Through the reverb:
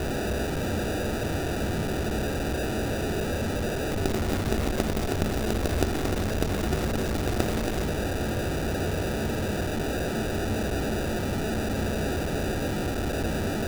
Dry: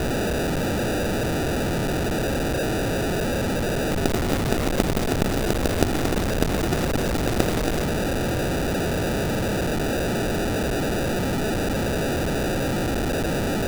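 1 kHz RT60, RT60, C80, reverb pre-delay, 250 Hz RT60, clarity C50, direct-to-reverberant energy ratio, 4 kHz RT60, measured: 0.50 s, 0.50 s, 20.5 dB, 3 ms, 0.55 s, 15.5 dB, 8.5 dB, 0.40 s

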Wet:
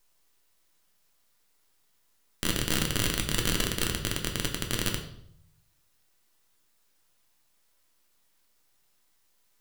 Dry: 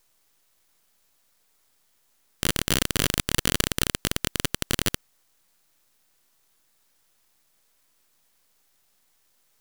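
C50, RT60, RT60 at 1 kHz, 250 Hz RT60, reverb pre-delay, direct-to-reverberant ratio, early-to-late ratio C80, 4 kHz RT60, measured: 8.0 dB, 0.70 s, 0.65 s, 0.85 s, 3 ms, 2.0 dB, 11.5 dB, 0.55 s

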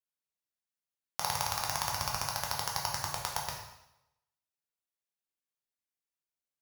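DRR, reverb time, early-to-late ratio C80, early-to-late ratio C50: -1.0 dB, 0.90 s, 6.0 dB, 3.5 dB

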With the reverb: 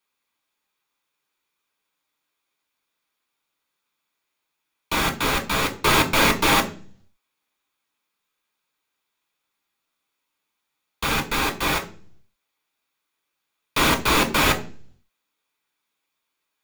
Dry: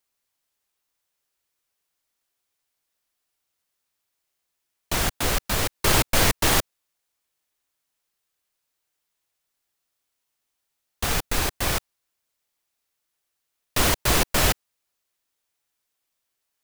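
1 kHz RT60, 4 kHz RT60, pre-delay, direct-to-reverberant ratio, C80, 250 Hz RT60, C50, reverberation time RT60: 0.35 s, 0.45 s, 7 ms, 3.0 dB, 18.5 dB, 0.70 s, 14.5 dB, 0.45 s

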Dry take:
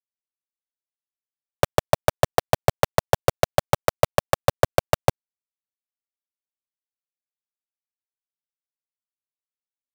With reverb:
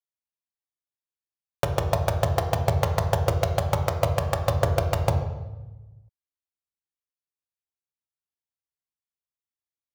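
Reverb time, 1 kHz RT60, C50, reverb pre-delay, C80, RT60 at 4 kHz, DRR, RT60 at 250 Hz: 1.1 s, 0.95 s, 8.0 dB, 3 ms, 10.0 dB, 0.80 s, 4.0 dB, 1.4 s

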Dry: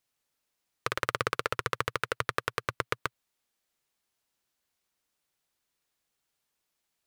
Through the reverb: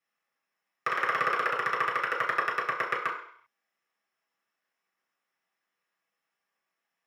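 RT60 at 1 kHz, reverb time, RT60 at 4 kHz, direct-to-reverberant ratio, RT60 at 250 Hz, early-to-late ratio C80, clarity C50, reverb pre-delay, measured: 0.65 s, 0.60 s, 0.65 s, -6.5 dB, 0.50 s, 9.5 dB, 6.5 dB, 3 ms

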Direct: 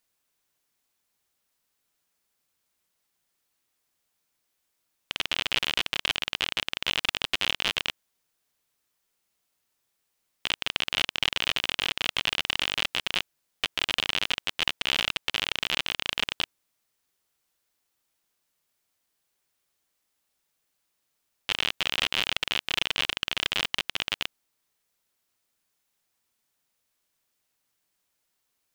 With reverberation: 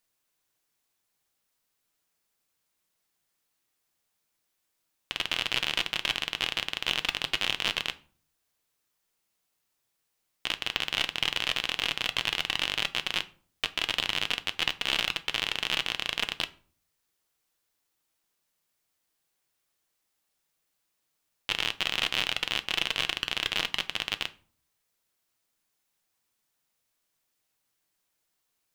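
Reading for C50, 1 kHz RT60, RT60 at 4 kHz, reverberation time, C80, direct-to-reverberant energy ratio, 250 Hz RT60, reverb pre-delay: 19.0 dB, 0.45 s, 0.30 s, 0.45 s, 24.0 dB, 10.0 dB, 0.65 s, 6 ms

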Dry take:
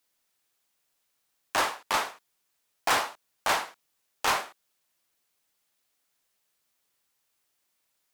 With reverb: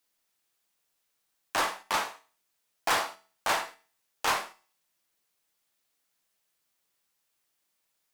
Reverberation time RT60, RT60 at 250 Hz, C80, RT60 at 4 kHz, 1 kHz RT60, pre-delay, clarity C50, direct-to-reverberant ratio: 0.40 s, 0.40 s, 22.5 dB, 0.40 s, 0.40 s, 4 ms, 18.0 dB, 11.5 dB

